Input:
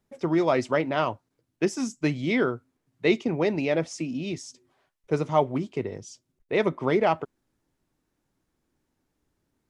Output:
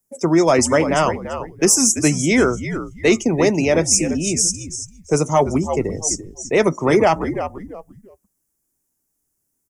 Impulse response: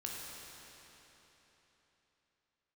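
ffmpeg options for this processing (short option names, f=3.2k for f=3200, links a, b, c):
-filter_complex "[0:a]asplit=4[a][b][c][d];[b]adelay=338,afreqshift=-76,volume=-10.5dB[e];[c]adelay=676,afreqshift=-152,volume=-20.7dB[f];[d]adelay=1014,afreqshift=-228,volume=-30.8dB[g];[a][e][f][g]amix=inputs=4:normalize=0,acrossover=split=230|1700[h][i][j];[j]aexciter=amount=12.8:drive=3.8:freq=5.8k[k];[h][i][k]amix=inputs=3:normalize=0,acontrast=39,apsyclip=9.5dB,afftdn=nr=16:nf=-29,volume=-6.5dB"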